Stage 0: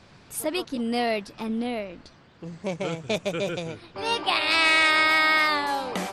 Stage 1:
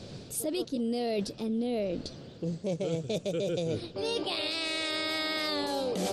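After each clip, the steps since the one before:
graphic EQ with 10 bands 125 Hz +5 dB, 250 Hz +3 dB, 500 Hz +9 dB, 1,000 Hz −10 dB, 2,000 Hz −8 dB, 4,000 Hz +5 dB, 8,000 Hz +3 dB
brickwall limiter −17.5 dBFS, peak gain reduction 9 dB
reversed playback
downward compressor 6 to 1, threshold −34 dBFS, peak gain reduction 12.5 dB
reversed playback
level +5 dB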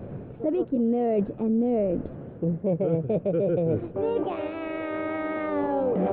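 Gaussian smoothing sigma 5.3 samples
level +7.5 dB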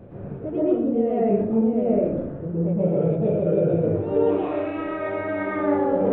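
convolution reverb RT60 0.80 s, pre-delay 108 ms, DRR −8.5 dB
level −6 dB

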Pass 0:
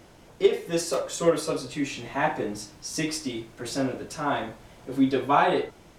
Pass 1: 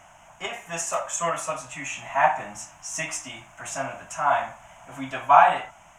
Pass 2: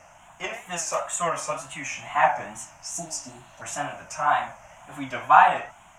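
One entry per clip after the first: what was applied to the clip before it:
drawn EQ curve 180 Hz 0 dB, 450 Hz −17 dB, 650 Hz +13 dB, 990 Hz +14 dB, 1,900 Hz +10 dB, 2,900 Hz +11 dB, 4,400 Hz −13 dB, 6,600 Hz +15 dB, 11,000 Hz +2 dB; level −6.5 dB
tape wow and flutter 120 cents; healed spectral selection 0:02.96–0:03.59, 940–4,400 Hz before

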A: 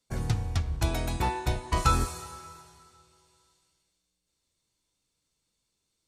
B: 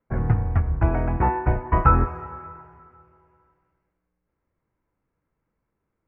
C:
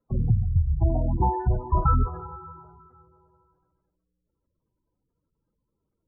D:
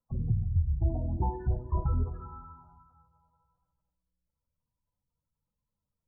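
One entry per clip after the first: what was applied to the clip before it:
inverse Chebyshev low-pass filter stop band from 3,600 Hz, stop band 40 dB; level +7.5 dB
gain into a clipping stage and back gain 13 dB; gate on every frequency bin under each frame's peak −15 dB strong; high-shelf EQ 2,200 Hz −11.5 dB
phaser swept by the level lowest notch 370 Hz, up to 1,500 Hz, full sweep at −17.5 dBFS; convolution reverb RT60 1.2 s, pre-delay 4 ms, DRR 12 dB; level −6.5 dB

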